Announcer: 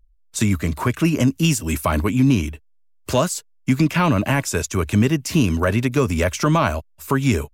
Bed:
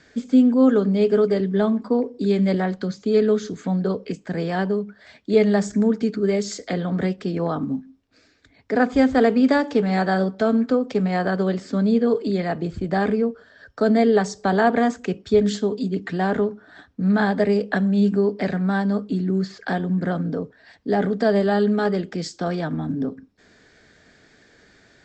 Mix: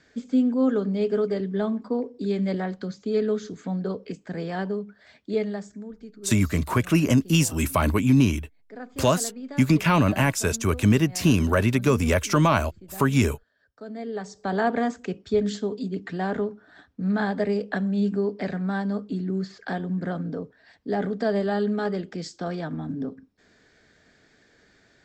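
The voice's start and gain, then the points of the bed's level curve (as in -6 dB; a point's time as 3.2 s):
5.90 s, -2.0 dB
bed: 5.26 s -6 dB
5.86 s -20.5 dB
13.87 s -20.5 dB
14.57 s -5.5 dB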